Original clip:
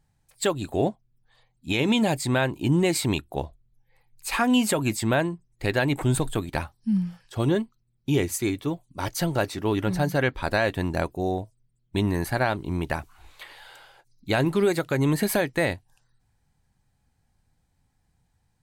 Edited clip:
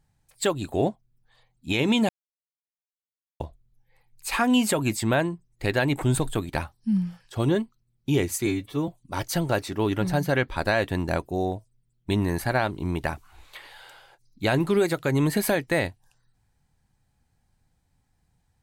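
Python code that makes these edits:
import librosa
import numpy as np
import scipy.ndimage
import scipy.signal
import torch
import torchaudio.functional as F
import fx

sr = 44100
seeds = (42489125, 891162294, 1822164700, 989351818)

y = fx.edit(x, sr, fx.silence(start_s=2.09, length_s=1.31),
    fx.stretch_span(start_s=8.46, length_s=0.28, factor=1.5), tone=tone)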